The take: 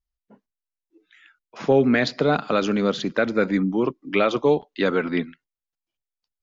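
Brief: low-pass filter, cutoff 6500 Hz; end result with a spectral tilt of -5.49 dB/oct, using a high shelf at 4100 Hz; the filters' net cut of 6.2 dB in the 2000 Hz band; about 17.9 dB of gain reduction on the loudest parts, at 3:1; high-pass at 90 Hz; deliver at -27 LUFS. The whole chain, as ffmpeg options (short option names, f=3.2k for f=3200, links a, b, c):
-af "highpass=90,lowpass=6.5k,equalizer=f=2k:t=o:g=-7,highshelf=f=4.1k:g=-7,acompressor=threshold=-39dB:ratio=3,volume=11dB"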